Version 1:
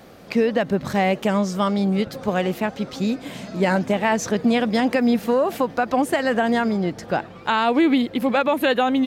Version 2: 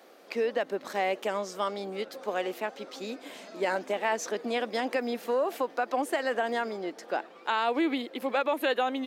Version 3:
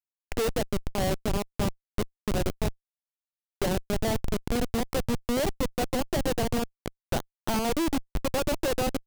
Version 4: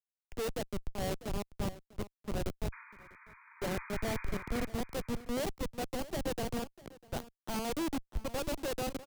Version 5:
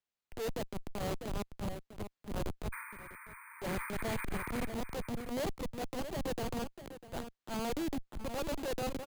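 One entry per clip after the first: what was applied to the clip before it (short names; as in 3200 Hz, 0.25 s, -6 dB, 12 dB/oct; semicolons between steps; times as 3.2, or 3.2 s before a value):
HPF 310 Hz 24 dB/oct; gain -7.5 dB
Schmitt trigger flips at -26.5 dBFS; dynamic EQ 1600 Hz, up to -5 dB, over -48 dBFS, Q 0.92; gain +6.5 dB
painted sound noise, 2.72–4.66, 870–2500 Hz -38 dBFS; echo 0.648 s -13.5 dB; three-band expander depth 100%; gain -8.5 dB
soft clip -37 dBFS, distortion -8 dB; transient shaper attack -7 dB, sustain +2 dB; careless resampling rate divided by 4×, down filtered, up hold; gain +6 dB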